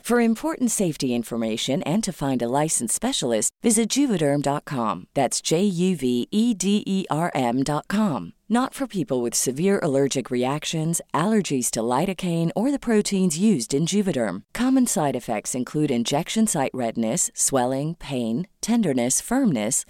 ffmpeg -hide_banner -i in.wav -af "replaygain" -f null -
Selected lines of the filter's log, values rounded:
track_gain = +3.6 dB
track_peak = 0.301